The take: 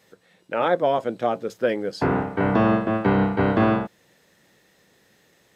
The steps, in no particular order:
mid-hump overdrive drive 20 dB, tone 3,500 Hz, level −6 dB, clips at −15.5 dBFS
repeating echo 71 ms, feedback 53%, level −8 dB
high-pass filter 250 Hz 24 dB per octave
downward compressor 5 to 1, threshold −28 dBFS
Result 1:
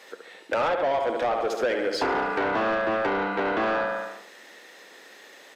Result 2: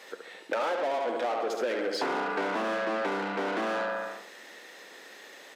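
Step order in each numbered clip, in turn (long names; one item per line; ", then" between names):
repeating echo, then downward compressor, then high-pass filter, then mid-hump overdrive
repeating echo, then mid-hump overdrive, then downward compressor, then high-pass filter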